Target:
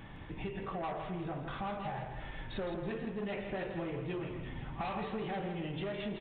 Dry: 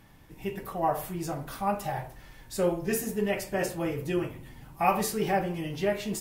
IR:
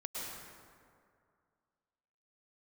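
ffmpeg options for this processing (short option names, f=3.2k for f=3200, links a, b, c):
-af "aresample=8000,asoftclip=type=tanh:threshold=-27.5dB,aresample=44100,acompressor=threshold=-45dB:ratio=6,aecho=1:1:163|326|489|652|815:0.422|0.177|0.0744|0.0312|0.0131,volume=7dB"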